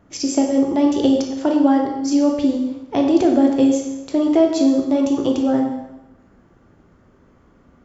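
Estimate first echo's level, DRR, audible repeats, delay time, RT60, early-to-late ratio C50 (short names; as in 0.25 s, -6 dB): none, 1.5 dB, none, none, 0.95 s, 5.0 dB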